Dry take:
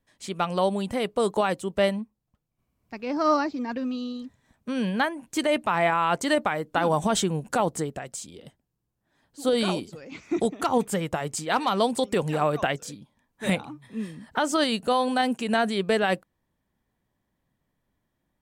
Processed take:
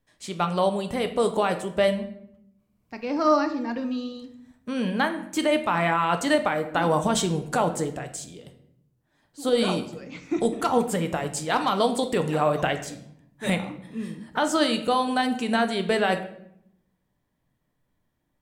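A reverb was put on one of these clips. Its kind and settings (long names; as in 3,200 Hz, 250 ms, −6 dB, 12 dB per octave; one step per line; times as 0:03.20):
rectangular room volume 170 cubic metres, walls mixed, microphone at 0.44 metres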